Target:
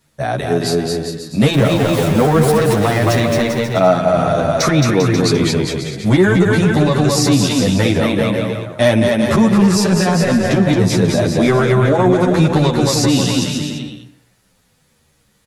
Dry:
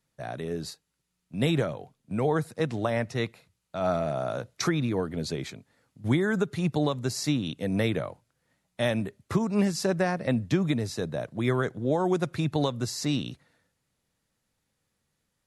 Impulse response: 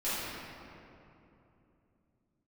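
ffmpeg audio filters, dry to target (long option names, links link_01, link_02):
-filter_complex "[0:a]asettb=1/sr,asplit=3[link_01][link_02][link_03];[link_01]atrim=end=1.534[link_04];[link_02]atrim=start=1.53:end=3.19,asetpts=PTS-STARTPTS,afade=type=in:duration=0.004:curve=qsin,afade=type=out:start_time=1.656:duration=0.004:curve=qsin,aeval=exprs='val(0)+0.5*0.015*sgn(val(0))':channel_layout=same[link_05];[link_03]atrim=start=3.186[link_06];[link_04][link_05]acrossfade=duration=0.004:curve1=hsin:curve2=qsin[link_07];[link_07][link_06]acrossfade=duration=0.004:curve1=qsin:curve2=hsin,asplit=2[link_08][link_09];[1:a]atrim=start_sample=2205,afade=type=out:start_time=0.29:duration=0.01,atrim=end_sample=13230[link_10];[link_09][link_10]afir=irnorm=-1:irlink=0,volume=-22.5dB[link_11];[link_08][link_11]amix=inputs=2:normalize=0,asoftclip=type=tanh:threshold=-19dB,aecho=1:1:220|396|536.8|649.4|739.6:0.631|0.398|0.251|0.158|0.1,alimiter=level_in=21dB:limit=-1dB:release=50:level=0:latency=1,asplit=2[link_12][link_13];[link_13]adelay=10,afreqshift=-0.87[link_14];[link_12][link_14]amix=inputs=2:normalize=1,volume=-1.5dB"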